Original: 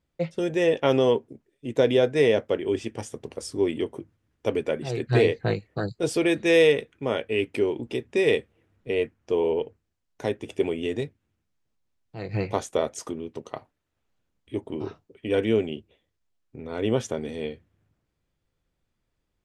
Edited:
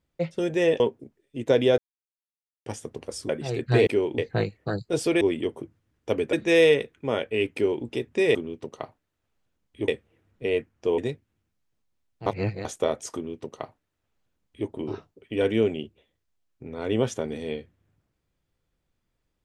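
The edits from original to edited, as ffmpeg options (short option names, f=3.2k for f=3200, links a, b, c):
-filter_complex "[0:a]asplit=14[a][b][c][d][e][f][g][h][i][j][k][l][m][n];[a]atrim=end=0.802[o];[b]atrim=start=1.088:end=2.07,asetpts=PTS-STARTPTS,afade=t=out:st=0.978:d=0.004:c=hsin[p];[c]atrim=start=2.07:end=2.95,asetpts=PTS-STARTPTS,volume=0[q];[d]atrim=start=2.95:end=3.582,asetpts=PTS-STARTPTS,afade=t=in:d=0.004:c=hsin[r];[e]atrim=start=4.698:end=5.282[s];[f]atrim=start=7.518:end=7.832[t];[g]atrim=start=5.278:end=6.312[u];[h]atrim=start=3.578:end=4.702[v];[i]atrim=start=6.308:end=8.332[w];[j]atrim=start=13.078:end=14.612[x];[k]atrim=start=8.328:end=9.432[y];[l]atrim=start=10.908:end=12.192[z];[m]atrim=start=12.188:end=12.582,asetpts=PTS-STARTPTS,areverse[aa];[n]atrim=start=12.578[ab];[p][q][r]concat=n=3:v=0:a=1[ac];[o][ac]acrossfade=d=0.004:c1=hsin:c2=hsin[ad];[ad][s]acrossfade=d=0.004:c1=hsin:c2=hsin[ae];[ae][t]acrossfade=d=0.004:c1=hsin:c2=hsin[af];[af][u]acrossfade=d=0.004:c1=hsin:c2=hsin[ag];[ag][v]acrossfade=d=0.004:c1=hsin:c2=hsin[ah];[ah][w]acrossfade=d=0.004:c1=hsin:c2=hsin[ai];[ai][x]acrossfade=d=0.004:c1=hsin:c2=hsin[aj];[aj][y]acrossfade=d=0.004:c1=hsin:c2=hsin[ak];[ak][z]acrossfade=d=0.004:c1=hsin:c2=hsin[al];[al][aa]acrossfade=d=0.004:c1=hsin:c2=hsin[am];[am][ab]acrossfade=d=0.004:c1=hsin:c2=hsin"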